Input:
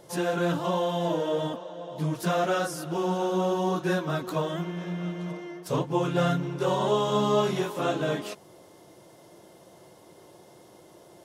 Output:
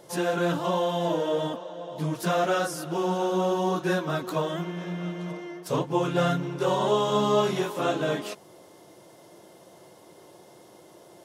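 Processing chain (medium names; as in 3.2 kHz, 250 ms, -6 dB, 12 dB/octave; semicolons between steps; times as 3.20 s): bass shelf 91 Hz -9.5 dB; trim +1.5 dB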